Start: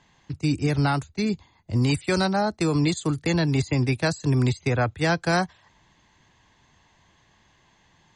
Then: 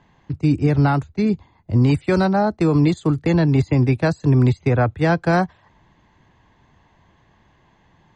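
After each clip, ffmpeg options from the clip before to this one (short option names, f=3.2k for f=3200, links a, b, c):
-af "lowpass=f=1.1k:p=1,volume=6.5dB"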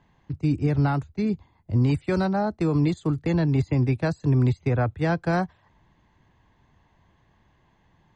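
-af "lowshelf=f=120:g=4.5,volume=-7dB"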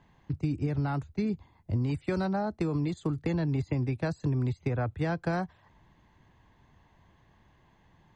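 -af "acompressor=threshold=-26dB:ratio=6"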